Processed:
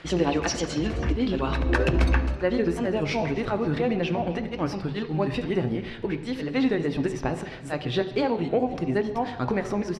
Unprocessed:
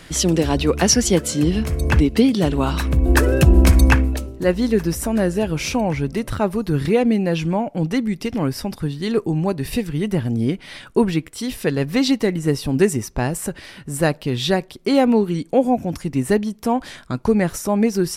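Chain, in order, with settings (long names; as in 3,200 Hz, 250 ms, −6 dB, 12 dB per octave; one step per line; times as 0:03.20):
low-pass filter 3,200 Hz 12 dB per octave
low-shelf EQ 190 Hz −11 dB
downward compressor, threshold −19 dBFS, peak gain reduction 7.5 dB
time stretch by overlap-add 0.55×, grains 145 ms
echo with shifted repeats 264 ms, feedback 52%, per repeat −120 Hz, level −19 dB
on a send at −8.5 dB: convolution reverb RT60 1.1 s, pre-delay 3 ms
on the sum: wow of a warped record 33 1/3 rpm, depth 100 cents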